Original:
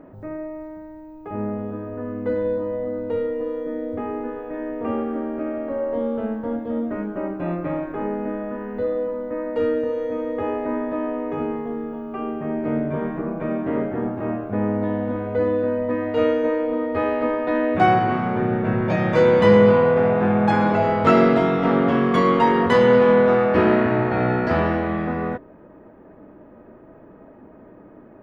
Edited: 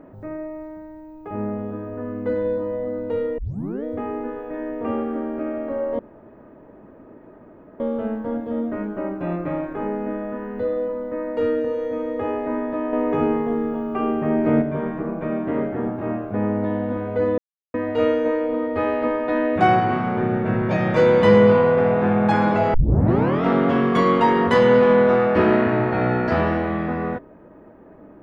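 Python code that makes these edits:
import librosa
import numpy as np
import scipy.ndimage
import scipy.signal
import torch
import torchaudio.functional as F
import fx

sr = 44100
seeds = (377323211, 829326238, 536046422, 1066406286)

y = fx.edit(x, sr, fx.tape_start(start_s=3.38, length_s=0.46),
    fx.insert_room_tone(at_s=5.99, length_s=1.81),
    fx.clip_gain(start_s=11.12, length_s=1.69, db=5.5),
    fx.silence(start_s=15.57, length_s=0.36),
    fx.tape_start(start_s=20.93, length_s=0.7), tone=tone)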